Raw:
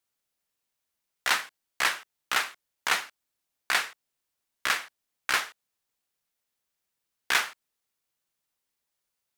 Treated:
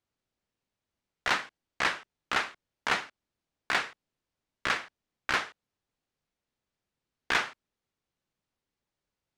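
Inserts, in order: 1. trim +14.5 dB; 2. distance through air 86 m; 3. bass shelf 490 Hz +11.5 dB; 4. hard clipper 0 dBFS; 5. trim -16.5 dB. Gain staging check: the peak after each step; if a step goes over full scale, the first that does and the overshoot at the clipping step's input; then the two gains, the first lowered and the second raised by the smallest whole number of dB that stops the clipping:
+5.0 dBFS, +4.0 dBFS, +5.5 dBFS, 0.0 dBFS, -16.5 dBFS; step 1, 5.5 dB; step 1 +8.5 dB, step 5 -10.5 dB

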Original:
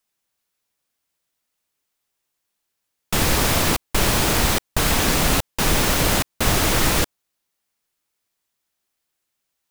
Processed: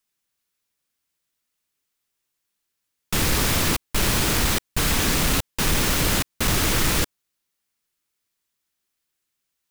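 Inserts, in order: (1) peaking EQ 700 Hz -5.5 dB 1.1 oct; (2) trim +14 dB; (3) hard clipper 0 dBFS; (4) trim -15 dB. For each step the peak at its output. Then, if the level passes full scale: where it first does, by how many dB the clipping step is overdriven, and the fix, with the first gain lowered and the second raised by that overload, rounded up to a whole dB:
-5.5 dBFS, +8.5 dBFS, 0.0 dBFS, -15.0 dBFS; step 2, 8.5 dB; step 2 +5 dB, step 4 -6 dB

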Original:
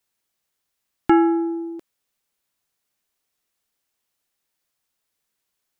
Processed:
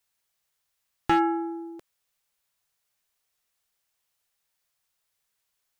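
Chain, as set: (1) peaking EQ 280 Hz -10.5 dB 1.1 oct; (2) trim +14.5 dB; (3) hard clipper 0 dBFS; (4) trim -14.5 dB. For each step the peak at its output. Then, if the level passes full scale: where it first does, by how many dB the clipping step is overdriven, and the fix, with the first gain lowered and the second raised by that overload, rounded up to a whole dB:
-8.5 dBFS, +6.0 dBFS, 0.0 dBFS, -14.5 dBFS; step 2, 6.0 dB; step 2 +8.5 dB, step 4 -8.5 dB

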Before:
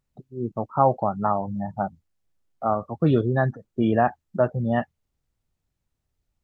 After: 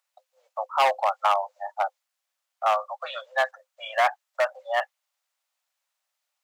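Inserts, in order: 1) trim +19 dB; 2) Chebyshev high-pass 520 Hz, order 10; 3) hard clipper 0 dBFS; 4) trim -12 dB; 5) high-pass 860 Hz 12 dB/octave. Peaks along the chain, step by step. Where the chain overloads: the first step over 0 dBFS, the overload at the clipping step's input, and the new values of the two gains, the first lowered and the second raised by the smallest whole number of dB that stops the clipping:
+12.5 dBFS, +10.0 dBFS, 0.0 dBFS, -12.0 dBFS, -7.5 dBFS; step 1, 10.0 dB; step 1 +9 dB, step 4 -2 dB

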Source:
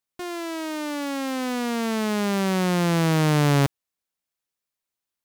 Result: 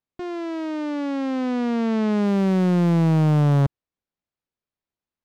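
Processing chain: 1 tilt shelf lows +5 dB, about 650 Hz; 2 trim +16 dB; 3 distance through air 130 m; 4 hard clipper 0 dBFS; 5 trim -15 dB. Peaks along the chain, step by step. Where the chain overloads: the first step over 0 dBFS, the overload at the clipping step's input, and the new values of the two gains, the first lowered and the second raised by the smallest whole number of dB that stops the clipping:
-9.0 dBFS, +7.0 dBFS, +7.0 dBFS, 0.0 dBFS, -15.0 dBFS; step 2, 7.0 dB; step 2 +9 dB, step 5 -8 dB

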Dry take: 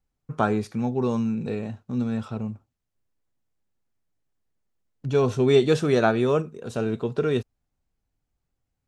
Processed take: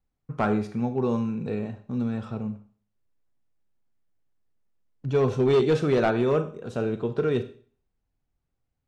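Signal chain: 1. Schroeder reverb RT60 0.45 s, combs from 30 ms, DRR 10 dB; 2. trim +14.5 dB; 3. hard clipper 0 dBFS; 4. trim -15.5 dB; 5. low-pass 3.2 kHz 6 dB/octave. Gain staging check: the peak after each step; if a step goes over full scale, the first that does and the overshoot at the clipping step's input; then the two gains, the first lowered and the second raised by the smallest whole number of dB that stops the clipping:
-5.5 dBFS, +9.0 dBFS, 0.0 dBFS, -15.5 dBFS, -15.5 dBFS; step 2, 9.0 dB; step 2 +5.5 dB, step 4 -6.5 dB

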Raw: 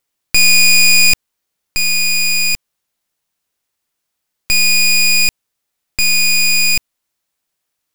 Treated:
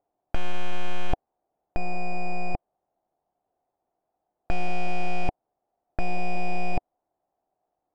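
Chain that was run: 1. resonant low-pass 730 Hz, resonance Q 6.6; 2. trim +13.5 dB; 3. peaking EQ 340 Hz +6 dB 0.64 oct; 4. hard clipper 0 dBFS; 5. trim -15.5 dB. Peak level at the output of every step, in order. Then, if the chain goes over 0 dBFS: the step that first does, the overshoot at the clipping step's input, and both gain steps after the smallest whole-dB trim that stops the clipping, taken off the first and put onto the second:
-6.5 dBFS, +7.0 dBFS, +8.5 dBFS, 0.0 dBFS, -15.5 dBFS; step 2, 8.5 dB; step 2 +4.5 dB, step 5 -6.5 dB

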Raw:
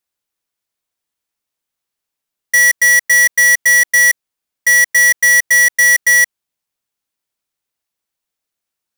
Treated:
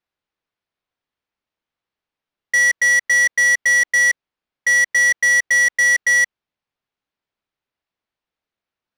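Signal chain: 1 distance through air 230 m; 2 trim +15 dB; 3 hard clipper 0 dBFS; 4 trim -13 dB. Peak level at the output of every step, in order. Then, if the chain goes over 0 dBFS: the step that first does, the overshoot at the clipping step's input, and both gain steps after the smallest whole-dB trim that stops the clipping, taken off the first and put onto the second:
-9.5 dBFS, +5.5 dBFS, 0.0 dBFS, -13.0 dBFS; step 2, 5.5 dB; step 2 +9 dB, step 4 -7 dB

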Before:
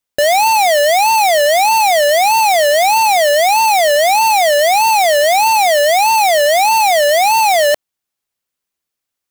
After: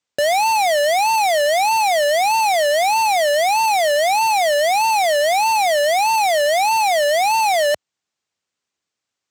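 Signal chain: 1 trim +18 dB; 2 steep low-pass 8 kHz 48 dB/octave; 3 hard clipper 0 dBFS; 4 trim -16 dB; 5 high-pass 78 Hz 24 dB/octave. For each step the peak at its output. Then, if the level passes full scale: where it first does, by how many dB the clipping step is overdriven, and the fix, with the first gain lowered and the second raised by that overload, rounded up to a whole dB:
+7.0 dBFS, +10.0 dBFS, 0.0 dBFS, -16.0 dBFS, -11.0 dBFS; step 1, 10.0 dB; step 1 +8 dB, step 4 -6 dB

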